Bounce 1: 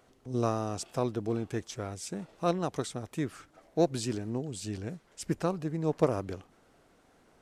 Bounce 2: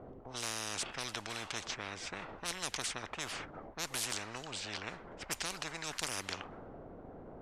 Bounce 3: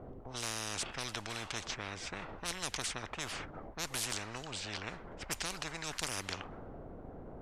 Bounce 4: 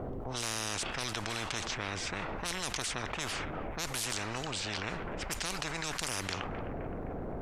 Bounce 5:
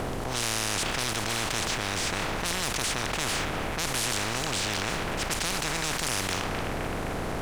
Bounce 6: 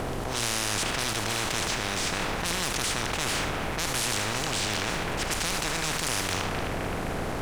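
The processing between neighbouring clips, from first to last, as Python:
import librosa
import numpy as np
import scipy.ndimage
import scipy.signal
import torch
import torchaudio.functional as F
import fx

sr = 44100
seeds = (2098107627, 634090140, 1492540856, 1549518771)

y1 = fx.env_lowpass(x, sr, base_hz=620.0, full_db=-26.5)
y1 = fx.spectral_comp(y1, sr, ratio=10.0)
y1 = F.gain(torch.from_numpy(y1), -2.5).numpy()
y2 = fx.low_shelf(y1, sr, hz=120.0, db=7.5)
y3 = fx.echo_bbd(y2, sr, ms=259, stages=4096, feedback_pct=61, wet_db=-16.5)
y3 = fx.env_flatten(y3, sr, amount_pct=70)
y4 = fx.bin_compress(y3, sr, power=0.4)
y4 = fx.leveller(y4, sr, passes=3)
y4 = F.gain(torch.from_numpy(y4), -8.5).numpy()
y5 = y4 + 10.0 ** (-9.0 / 20.0) * np.pad(y4, (int(76 * sr / 1000.0), 0))[:len(y4)]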